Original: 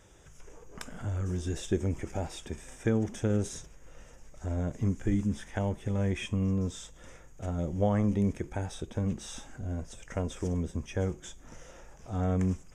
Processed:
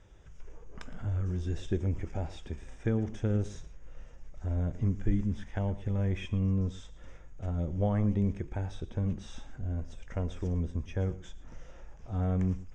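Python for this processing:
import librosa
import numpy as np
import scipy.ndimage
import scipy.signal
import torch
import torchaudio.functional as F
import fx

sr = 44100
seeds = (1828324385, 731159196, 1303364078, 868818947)

p1 = scipy.signal.sosfilt(scipy.signal.butter(2, 4600.0, 'lowpass', fs=sr, output='sos'), x)
p2 = fx.low_shelf(p1, sr, hz=95.0, db=11.5)
p3 = p2 + fx.echo_single(p2, sr, ms=114, db=-17.0, dry=0)
y = F.gain(torch.from_numpy(p3), -4.5).numpy()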